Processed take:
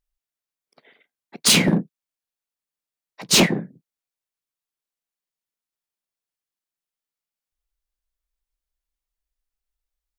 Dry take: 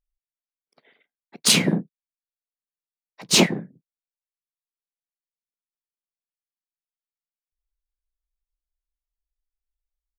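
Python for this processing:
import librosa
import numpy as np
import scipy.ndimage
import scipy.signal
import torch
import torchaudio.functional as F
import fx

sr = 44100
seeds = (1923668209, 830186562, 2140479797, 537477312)

p1 = fx.low_shelf(x, sr, hz=65.0, db=-4.0)
p2 = 10.0 ** (-16.5 / 20.0) * (np.abs((p1 / 10.0 ** (-16.5 / 20.0) + 3.0) % 4.0 - 2.0) - 1.0)
y = p1 + (p2 * librosa.db_to_amplitude(-3.5))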